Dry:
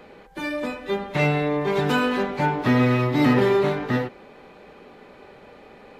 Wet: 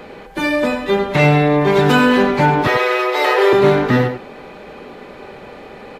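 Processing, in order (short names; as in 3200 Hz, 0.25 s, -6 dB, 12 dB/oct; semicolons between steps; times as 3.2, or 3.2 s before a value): 2.67–3.53 steep high-pass 380 Hz 72 dB/oct; in parallel at -2 dB: limiter -19.5 dBFS, peak gain reduction 9.5 dB; on the sum: tapped delay 88/96 ms -16.5/-11.5 dB; gain +5.5 dB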